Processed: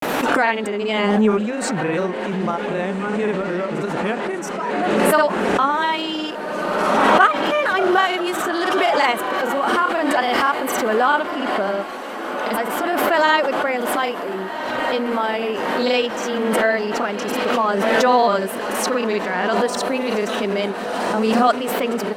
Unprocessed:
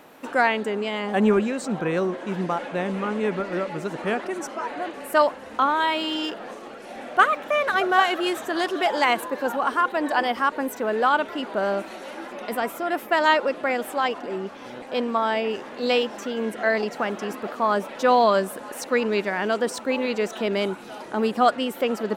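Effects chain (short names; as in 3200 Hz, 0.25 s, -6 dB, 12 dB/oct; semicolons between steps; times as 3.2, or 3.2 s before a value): grains, spray 36 ms, pitch spread up and down by 0 st; diffused feedback echo 1.444 s, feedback 64%, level -12.5 dB; backwards sustainer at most 21 dB/s; gain +3 dB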